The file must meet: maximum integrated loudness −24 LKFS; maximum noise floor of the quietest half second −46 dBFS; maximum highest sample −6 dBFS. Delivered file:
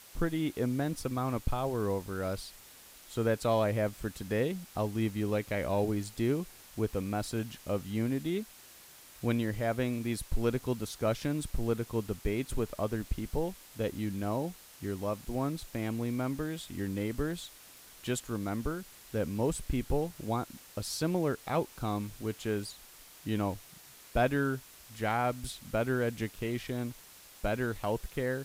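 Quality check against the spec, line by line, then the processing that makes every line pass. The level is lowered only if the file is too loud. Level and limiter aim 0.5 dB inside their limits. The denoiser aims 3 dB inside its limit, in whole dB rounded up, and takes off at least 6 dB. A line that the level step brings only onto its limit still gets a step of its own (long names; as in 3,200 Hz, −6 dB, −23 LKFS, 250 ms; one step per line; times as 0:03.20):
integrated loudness −34.0 LKFS: in spec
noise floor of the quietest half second −54 dBFS: in spec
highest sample −14.5 dBFS: in spec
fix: no processing needed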